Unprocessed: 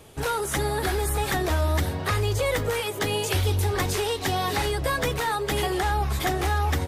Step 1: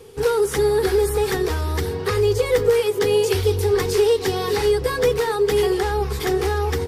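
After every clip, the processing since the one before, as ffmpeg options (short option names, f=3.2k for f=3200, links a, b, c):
-af "superequalizer=7b=3.98:8b=0.398:14b=1.58"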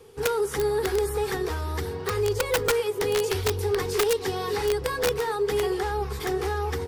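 -filter_complex "[0:a]acrossover=split=830|1400[a][b][c];[b]acontrast=29[d];[a][d][c]amix=inputs=3:normalize=0,aeval=exprs='(mod(2.99*val(0)+1,2)-1)/2.99':c=same,volume=-7dB"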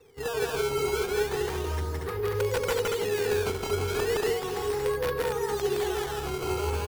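-af "aemphasis=mode=reproduction:type=50fm,acrusher=samples=14:mix=1:aa=0.000001:lfo=1:lforange=22.4:lforate=0.35,aecho=1:1:166.2|233.2:0.891|0.708,volume=-6.5dB"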